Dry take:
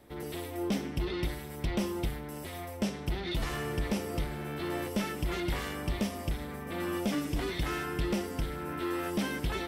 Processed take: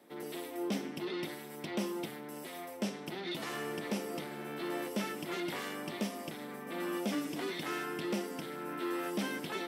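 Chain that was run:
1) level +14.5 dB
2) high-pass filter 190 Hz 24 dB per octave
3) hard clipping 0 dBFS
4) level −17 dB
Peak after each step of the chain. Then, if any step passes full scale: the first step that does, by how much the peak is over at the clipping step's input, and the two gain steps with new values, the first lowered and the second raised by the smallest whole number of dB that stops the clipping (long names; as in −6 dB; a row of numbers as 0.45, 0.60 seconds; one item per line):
−8.0, −5.0, −5.0, −22.0 dBFS
no step passes full scale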